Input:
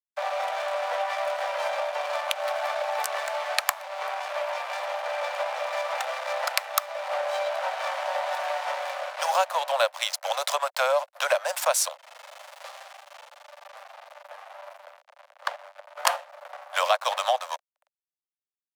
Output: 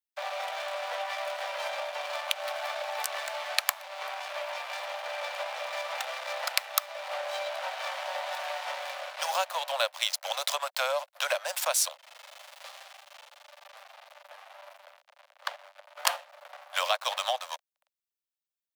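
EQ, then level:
parametric band 3,500 Hz +7 dB 1.9 octaves
high-shelf EQ 11,000 Hz +11.5 dB
−7.5 dB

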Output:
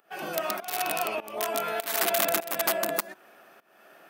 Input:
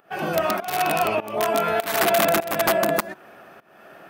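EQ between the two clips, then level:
high-pass filter 220 Hz 12 dB per octave
high-shelf EQ 3,200 Hz +9 dB
−9.0 dB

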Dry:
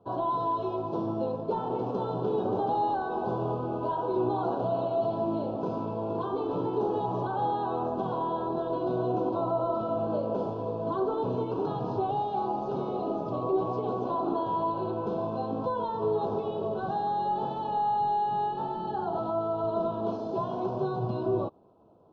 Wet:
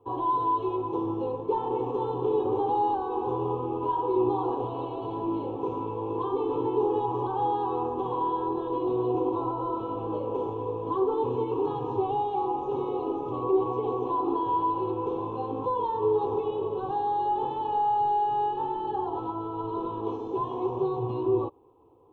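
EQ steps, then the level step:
notch filter 580 Hz, Q 12
phaser with its sweep stopped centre 970 Hz, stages 8
+4.0 dB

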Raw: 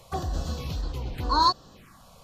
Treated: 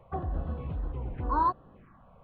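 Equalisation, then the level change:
Gaussian smoothing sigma 4.5 samples
−2.5 dB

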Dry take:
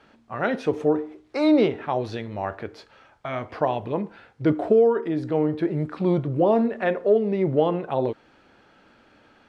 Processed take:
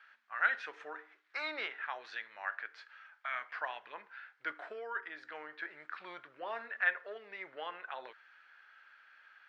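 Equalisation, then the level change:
high-pass with resonance 1,600 Hz, resonance Q 3.4
high-frequency loss of the air 110 metres
−7.0 dB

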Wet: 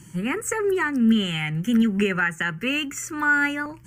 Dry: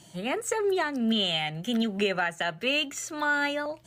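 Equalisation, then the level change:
low-shelf EQ 200 Hz +6.5 dB
phaser with its sweep stopped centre 1,600 Hz, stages 4
+7.0 dB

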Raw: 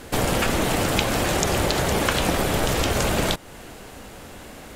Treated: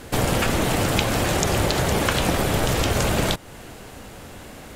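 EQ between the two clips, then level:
parametric band 110 Hz +4 dB 1.1 octaves
0.0 dB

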